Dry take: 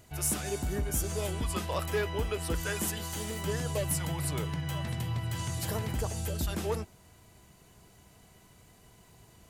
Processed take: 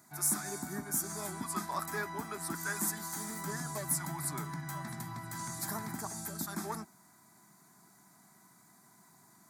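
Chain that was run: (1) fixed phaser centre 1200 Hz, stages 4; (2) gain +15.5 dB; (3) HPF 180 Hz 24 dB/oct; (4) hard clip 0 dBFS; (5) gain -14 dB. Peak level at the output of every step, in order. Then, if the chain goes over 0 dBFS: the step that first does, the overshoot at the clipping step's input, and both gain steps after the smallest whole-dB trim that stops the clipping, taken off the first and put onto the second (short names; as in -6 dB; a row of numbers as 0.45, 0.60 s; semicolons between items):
-19.5, -4.0, -5.0, -5.0, -19.0 dBFS; no overload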